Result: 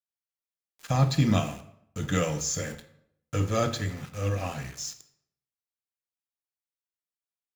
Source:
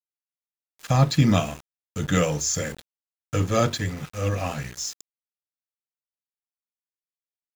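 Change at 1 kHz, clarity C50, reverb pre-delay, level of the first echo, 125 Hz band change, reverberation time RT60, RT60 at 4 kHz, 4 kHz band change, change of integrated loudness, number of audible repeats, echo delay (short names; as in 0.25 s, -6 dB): -4.5 dB, 13.0 dB, 16 ms, none, -3.5 dB, 0.75 s, 0.50 s, -4.5 dB, -4.0 dB, none, none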